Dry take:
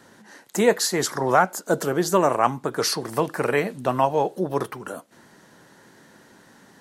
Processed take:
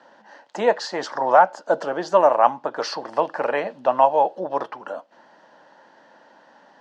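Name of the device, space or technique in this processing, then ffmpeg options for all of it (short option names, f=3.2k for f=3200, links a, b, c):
phone earpiece: -af "highpass=380,equalizer=f=400:t=q:w=4:g=-9,equalizer=f=590:t=q:w=4:g=7,equalizer=f=870:t=q:w=4:g=6,equalizer=f=1.3k:t=q:w=4:g=-3,equalizer=f=2.2k:t=q:w=4:g=-8,equalizer=f=3.8k:t=q:w=4:g=-7,lowpass=f=4.4k:w=0.5412,lowpass=f=4.4k:w=1.3066,volume=1.5dB"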